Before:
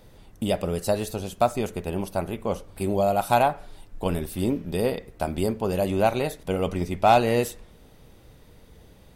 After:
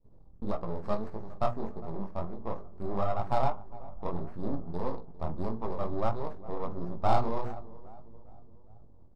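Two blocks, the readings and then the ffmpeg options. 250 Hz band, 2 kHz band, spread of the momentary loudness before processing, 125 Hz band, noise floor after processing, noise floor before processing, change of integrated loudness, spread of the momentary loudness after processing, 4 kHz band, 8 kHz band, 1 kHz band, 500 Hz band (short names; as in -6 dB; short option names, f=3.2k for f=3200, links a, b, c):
-9.5 dB, -16.0 dB, 11 LU, -7.0 dB, -51 dBFS, -52 dBFS, -9.5 dB, 13 LU, -16.5 dB, under -25 dB, -8.5 dB, -10.5 dB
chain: -filter_complex "[0:a]aeval=exprs='max(val(0),0)':c=same,equalizer=f=610:t=o:w=2.3:g=-6.5,agate=range=-8dB:threshold=-56dB:ratio=16:detection=peak,asuperstop=centerf=2200:order=12:qfactor=0.84,bandreject=f=60:t=h:w=6,bandreject=f=120:t=h:w=6,bandreject=f=180:t=h:w=6,bandreject=f=240:t=h:w=6,bandreject=f=300:t=h:w=6,bandreject=f=360:t=h:w=6,bandreject=f=420:t=h:w=6,bandreject=f=480:t=h:w=6,asplit=2[a][b];[b]adelay=45,volume=-13.5dB[c];[a][c]amix=inputs=2:normalize=0,aecho=1:1:407|814|1221|1628:0.133|0.0693|0.0361|0.0188,flanger=delay=17:depth=7.3:speed=1.6,asplit=2[d][e];[e]acrusher=samples=10:mix=1:aa=0.000001,volume=-8dB[f];[d][f]amix=inputs=2:normalize=0,adynamicsmooth=sensitivity=3:basefreq=1.2k,adynamicequalizer=threshold=0.00355:dfrequency=1400:dqfactor=0.73:tfrequency=1400:tqfactor=0.73:attack=5:release=100:ratio=0.375:range=3.5:mode=boostabove:tftype=bell,volume=-1dB"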